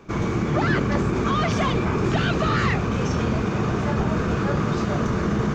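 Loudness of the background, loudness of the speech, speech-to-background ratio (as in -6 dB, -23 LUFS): -23.5 LUFS, -28.0 LUFS, -4.5 dB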